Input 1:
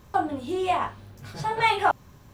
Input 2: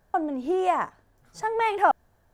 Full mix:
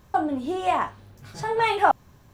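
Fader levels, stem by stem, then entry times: -3.0 dB, 0.0 dB; 0.00 s, 0.00 s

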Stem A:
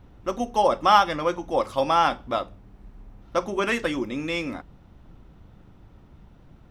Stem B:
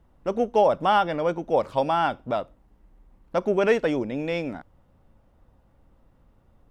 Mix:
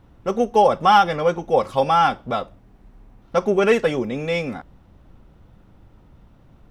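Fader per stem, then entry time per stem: -1.0 dB, +2.5 dB; 0.00 s, 0.00 s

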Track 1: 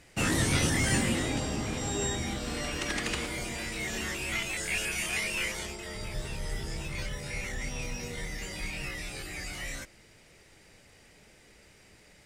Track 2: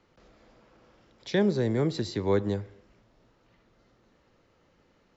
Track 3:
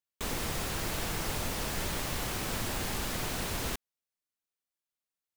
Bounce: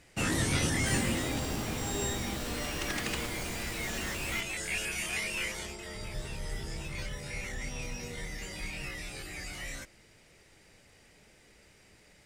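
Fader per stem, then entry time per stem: -2.5 dB, mute, -7.0 dB; 0.00 s, mute, 0.65 s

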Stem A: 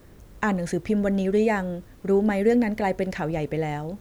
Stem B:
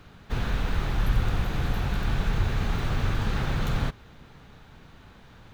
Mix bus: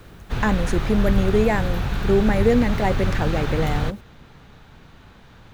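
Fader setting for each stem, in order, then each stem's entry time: +2.0 dB, +3.0 dB; 0.00 s, 0.00 s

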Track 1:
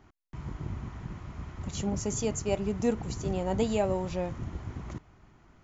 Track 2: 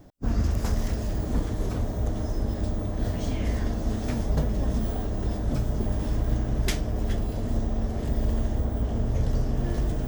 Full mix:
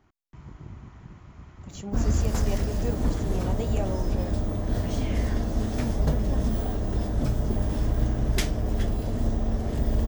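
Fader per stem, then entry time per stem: -5.5 dB, +1.0 dB; 0.00 s, 1.70 s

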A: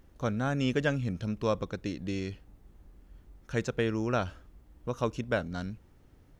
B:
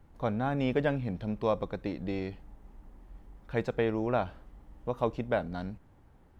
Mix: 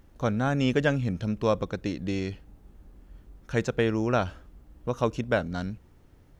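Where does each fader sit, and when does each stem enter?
+2.0 dB, -8.0 dB; 0.00 s, 0.00 s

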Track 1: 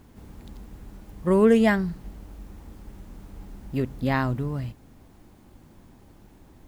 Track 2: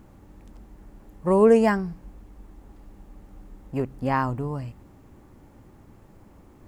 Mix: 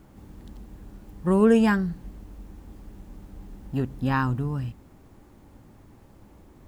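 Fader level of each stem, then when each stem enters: -4.5 dB, -2.5 dB; 0.00 s, 0.00 s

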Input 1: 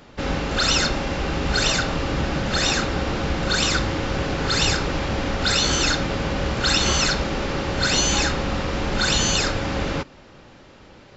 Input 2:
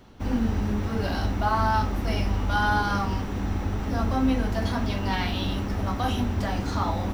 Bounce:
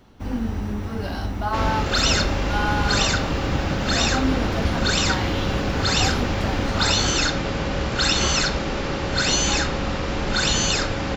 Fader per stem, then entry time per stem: -0.5 dB, -1.0 dB; 1.35 s, 0.00 s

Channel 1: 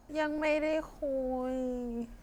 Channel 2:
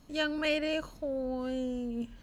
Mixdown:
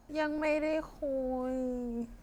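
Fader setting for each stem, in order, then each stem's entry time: -1.5 dB, -14.5 dB; 0.00 s, 0.00 s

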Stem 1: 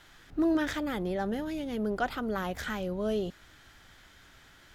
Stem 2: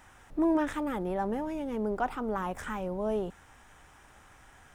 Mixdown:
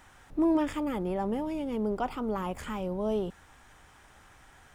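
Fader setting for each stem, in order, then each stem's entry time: -10.0 dB, -0.5 dB; 0.00 s, 0.00 s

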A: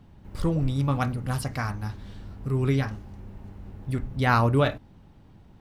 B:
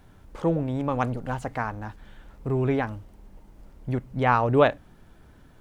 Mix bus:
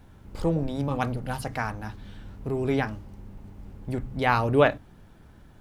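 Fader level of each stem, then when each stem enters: -4.0 dB, -1.0 dB; 0.00 s, 0.00 s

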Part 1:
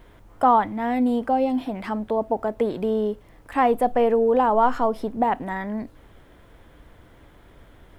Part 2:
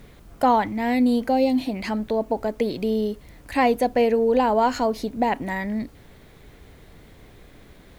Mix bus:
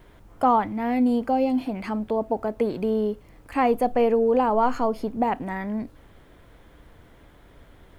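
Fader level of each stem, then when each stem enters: -1.5 dB, -13.5 dB; 0.00 s, 0.00 s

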